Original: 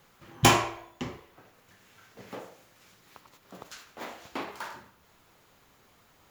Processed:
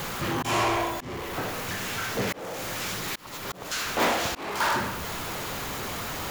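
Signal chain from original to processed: power-law curve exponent 0.5; auto swell 0.377 s

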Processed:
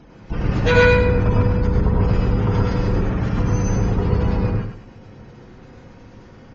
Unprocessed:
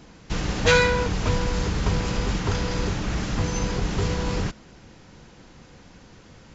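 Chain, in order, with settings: spectral gate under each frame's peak -25 dB strong; high shelf 2100 Hz -8 dB; on a send: feedback echo 0.102 s, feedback 28%, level -7 dB; on the sum: non-linear reverb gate 0.16 s rising, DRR -1 dB; gain +2 dB

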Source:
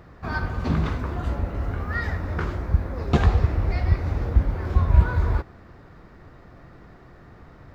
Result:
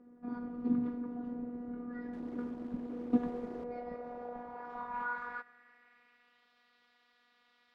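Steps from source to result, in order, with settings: robotiser 242 Hz; 2.13–3.64 requantised 6-bit, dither none; band-pass sweep 290 Hz -> 3500 Hz, 3.11–6.52

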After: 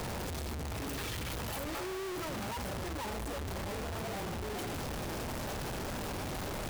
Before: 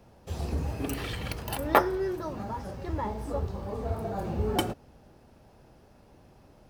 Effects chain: infinite clipping; gain -5.5 dB

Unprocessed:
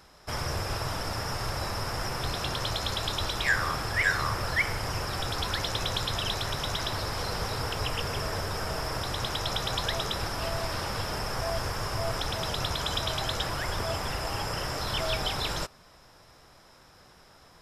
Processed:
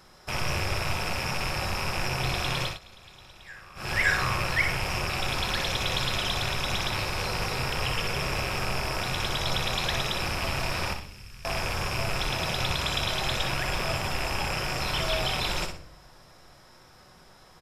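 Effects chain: rattling part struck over -36 dBFS, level -21 dBFS; 10.93–11.45 passive tone stack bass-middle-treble 6-0-2; feedback echo 61 ms, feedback 28%, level -7.5 dB; reverb RT60 0.60 s, pre-delay 5 ms, DRR 7.5 dB; 2.62–3.92 dip -21.5 dB, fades 0.17 s

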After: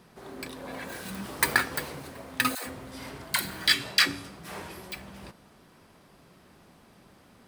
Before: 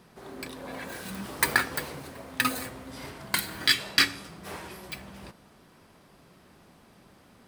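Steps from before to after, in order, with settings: 2.55–4.96 dispersion lows, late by 0.116 s, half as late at 410 Hz

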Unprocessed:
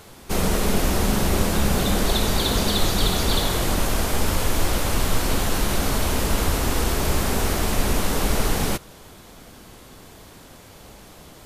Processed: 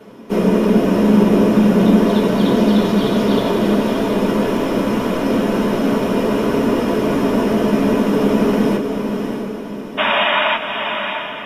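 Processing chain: painted sound noise, 9.97–10.56, 560–3800 Hz -17 dBFS; diffused feedback echo 0.642 s, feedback 45%, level -6 dB; reverb, pre-delay 3 ms, DRR -7 dB; gain -13 dB

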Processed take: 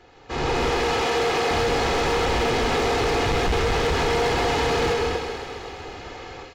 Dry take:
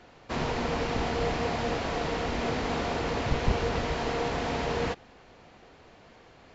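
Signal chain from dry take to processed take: soft clip -26.5 dBFS, distortion -12 dB; 0.7–1.51 HPF 360 Hz 6 dB/oct; tape echo 0.129 s, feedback 65%, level -9 dB, low-pass 4000 Hz; non-linear reverb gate 0.26 s rising, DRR 4.5 dB; AGC gain up to 14 dB; comb 2.4 ms, depth 55%; hard clip -14.5 dBFS, distortion -11 dB; compressor, threshold -20 dBFS, peak gain reduction 4.5 dB; thin delay 0.131 s, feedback 73%, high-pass 2100 Hz, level -7.5 dB

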